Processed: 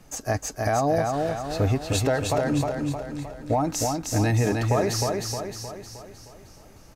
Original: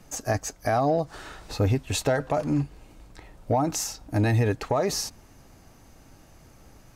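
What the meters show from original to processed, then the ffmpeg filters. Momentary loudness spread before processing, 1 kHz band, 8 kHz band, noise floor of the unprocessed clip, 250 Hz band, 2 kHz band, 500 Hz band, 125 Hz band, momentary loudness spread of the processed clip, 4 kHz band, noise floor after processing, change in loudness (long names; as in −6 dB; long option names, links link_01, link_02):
9 LU, +2.0 dB, +2.0 dB, −53 dBFS, +2.0 dB, +2.0 dB, +2.0 dB, +1.5 dB, 13 LU, +2.0 dB, −49 dBFS, +1.0 dB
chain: -af "aecho=1:1:310|620|930|1240|1550|1860|2170:0.668|0.341|0.174|0.0887|0.0452|0.0231|0.0118"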